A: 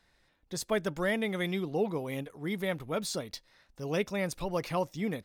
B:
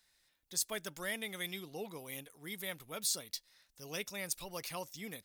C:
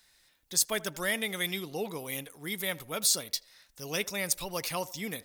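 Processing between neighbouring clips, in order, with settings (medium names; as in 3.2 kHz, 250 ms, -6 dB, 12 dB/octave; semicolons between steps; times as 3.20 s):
pre-emphasis filter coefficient 0.9; trim +5 dB
band-passed feedback delay 81 ms, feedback 40%, band-pass 690 Hz, level -18 dB; trim +8.5 dB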